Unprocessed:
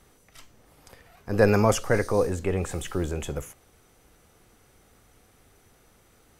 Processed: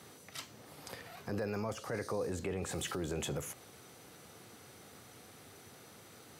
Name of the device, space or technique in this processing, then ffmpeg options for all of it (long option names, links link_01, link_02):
broadcast voice chain: -af "highpass=frequency=100:width=0.5412,highpass=frequency=100:width=1.3066,deesser=0.65,acompressor=threshold=-36dB:ratio=5,equalizer=frequency=4200:width_type=o:width=0.55:gain=4.5,alimiter=level_in=8.5dB:limit=-24dB:level=0:latency=1:release=10,volume=-8.5dB,volume=4.5dB"